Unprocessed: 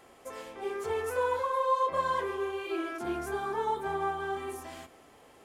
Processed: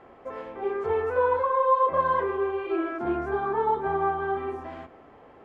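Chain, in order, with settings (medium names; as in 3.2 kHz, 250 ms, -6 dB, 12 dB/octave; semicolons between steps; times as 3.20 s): low-pass 1.6 kHz 12 dB/octave; trim +6.5 dB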